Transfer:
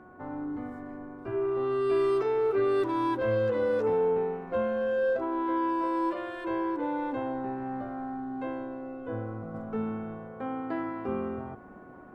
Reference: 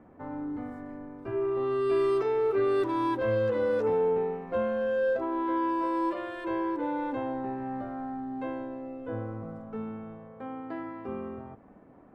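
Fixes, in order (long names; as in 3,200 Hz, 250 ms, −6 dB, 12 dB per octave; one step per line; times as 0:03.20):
hum removal 366.2 Hz, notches 4
level correction −4.5 dB, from 0:09.54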